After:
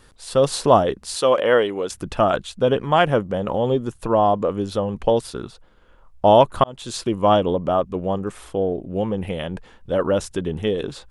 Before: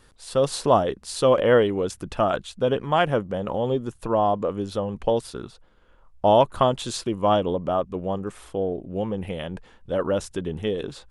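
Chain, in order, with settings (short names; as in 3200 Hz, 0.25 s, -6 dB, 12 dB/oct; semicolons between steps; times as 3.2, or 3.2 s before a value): 1.16–1.9 HPF 530 Hz 6 dB/oct; 6.64–7.08 fade in; gain +4 dB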